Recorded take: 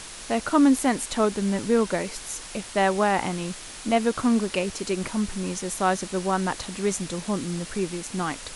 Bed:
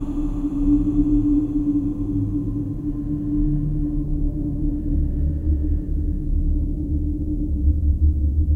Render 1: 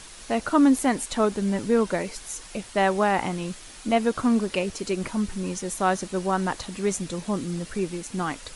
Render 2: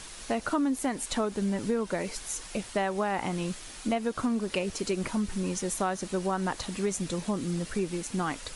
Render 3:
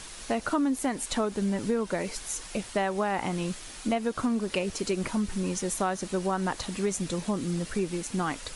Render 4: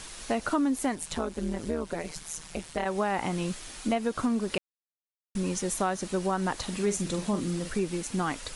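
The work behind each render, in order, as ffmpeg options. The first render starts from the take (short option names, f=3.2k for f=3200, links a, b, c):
-af "afftdn=nr=6:nf=-40"
-af "acompressor=threshold=-25dB:ratio=6"
-af "volume=1dB"
-filter_complex "[0:a]asplit=3[a][b][c];[a]afade=t=out:st=0.94:d=0.02[d];[b]tremolo=f=160:d=0.889,afade=t=in:st=0.94:d=0.02,afade=t=out:st=2.85:d=0.02[e];[c]afade=t=in:st=2.85:d=0.02[f];[d][e][f]amix=inputs=3:normalize=0,asettb=1/sr,asplit=3[g][h][i];[g]atrim=end=6.624[j];[h]atrim=start=6.62:end=7.69,asetpts=PTS-STARTPTS,afade=t=in:d=0.004:c=qsin,afade=t=out:st=1.066:d=0.004:c=qsin,asplit=2[k][l];[l]adelay=44,volume=-9dB[m];[k][m]amix=inputs=2:normalize=0,atrim=end_sample=47187[n];[i]atrim=start=7.686[o];[j][n]acrossfade=d=0.004:c1=hsin:c2=qsin[p];[p][o]acrossfade=d=0.004:c1=qsin:c2=hsin,asplit=3[q][r][s];[q]atrim=end=4.58,asetpts=PTS-STARTPTS,afade=t=out:st=4.576:d=0.004:c=hsin[t];[r]atrim=start=4.58:end=5.35,asetpts=PTS-STARTPTS,volume=0[u];[s]atrim=start=5.35,asetpts=PTS-STARTPTS,afade=t=in:d=0.004:c=hsin[v];[t][u][v]concat=n=3:v=0:a=1"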